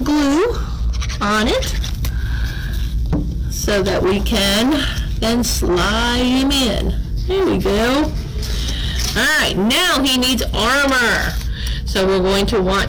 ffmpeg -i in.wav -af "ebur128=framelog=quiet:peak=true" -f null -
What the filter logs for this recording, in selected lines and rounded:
Integrated loudness:
  I:         -17.0 LUFS
  Threshold: -27.0 LUFS
Loudness range:
  LRA:         4.0 LU
  Threshold: -36.9 LUFS
  LRA low:   -19.3 LUFS
  LRA high:  -15.4 LUFS
True peak:
  Peak:      -11.2 dBFS